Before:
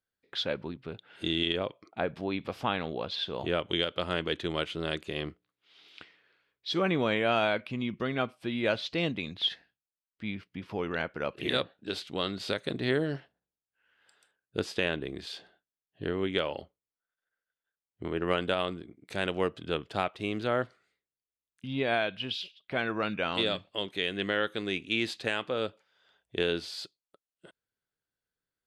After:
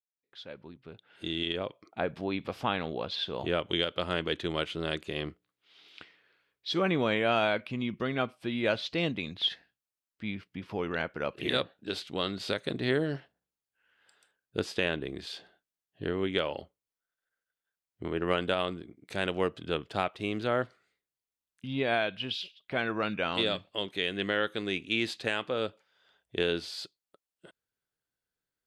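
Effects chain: fade-in on the opening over 2.11 s

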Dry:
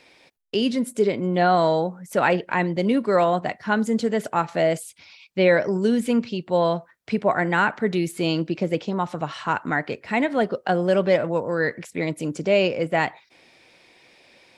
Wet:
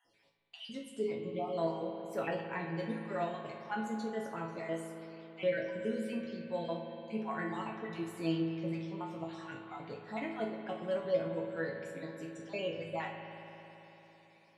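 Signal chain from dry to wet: random holes in the spectrogram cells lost 42%; chord resonator A2 major, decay 0.38 s; spring tank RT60 3.8 s, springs 55 ms, chirp 20 ms, DRR 4.5 dB

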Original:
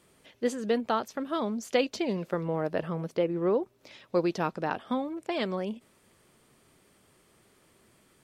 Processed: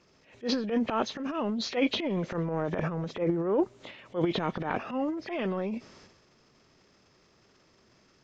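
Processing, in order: knee-point frequency compression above 1.7 kHz 1.5:1; transient shaper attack -11 dB, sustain +11 dB

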